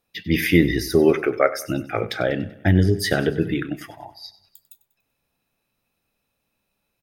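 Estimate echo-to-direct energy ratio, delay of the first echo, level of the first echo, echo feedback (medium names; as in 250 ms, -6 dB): -16.0 dB, 96 ms, -17.0 dB, 48%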